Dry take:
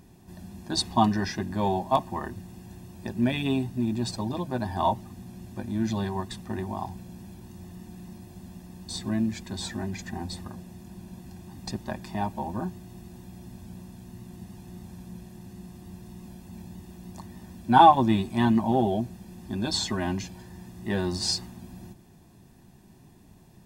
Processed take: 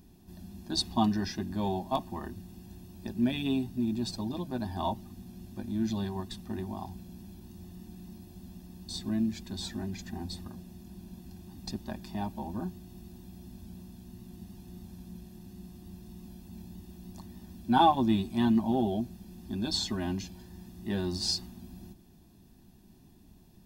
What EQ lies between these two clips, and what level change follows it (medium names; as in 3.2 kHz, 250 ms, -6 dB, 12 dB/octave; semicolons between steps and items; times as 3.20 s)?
graphic EQ 125/500/1000/2000/8000 Hz -9/-8/-7/-9/-8 dB; +1.5 dB